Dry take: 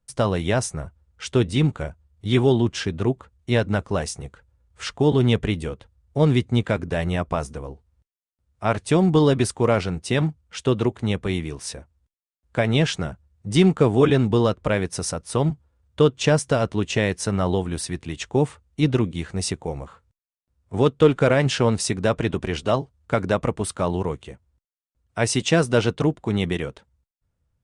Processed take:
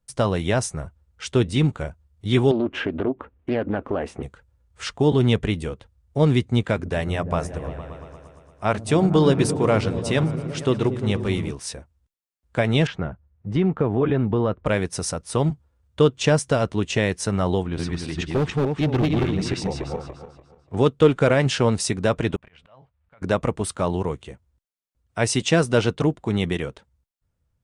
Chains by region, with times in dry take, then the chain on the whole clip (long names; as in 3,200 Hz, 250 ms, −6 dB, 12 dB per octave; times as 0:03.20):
0:02.51–0:04.23: drawn EQ curve 160 Hz 0 dB, 270 Hz +15 dB, 420 Hz +11 dB, 2,700 Hz +4 dB, 5,100 Hz −17 dB + downward compressor 3 to 1, threshold −23 dBFS + highs frequency-modulated by the lows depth 0.33 ms
0:06.74–0:11.51: mains-hum notches 60/120/180/240/300 Hz + echo whose low-pass opens from repeat to repeat 115 ms, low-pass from 200 Hz, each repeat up 1 octave, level −6 dB
0:12.87–0:14.66: low-pass filter 1,900 Hz + downward compressor 2.5 to 1, threshold −17 dBFS
0:17.63–0:20.77: feedback delay that plays each chunk backwards 146 ms, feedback 50%, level 0 dB + low-pass filter 4,200 Hz + gain into a clipping stage and back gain 16.5 dB
0:22.36–0:23.22: drawn EQ curve 170 Hz 0 dB, 370 Hz −8 dB, 540 Hz +5 dB, 2,400 Hz +9 dB, 6,000 Hz −9 dB + downward compressor 10 to 1, threshold −26 dBFS + volume swells 701 ms
whole clip: no processing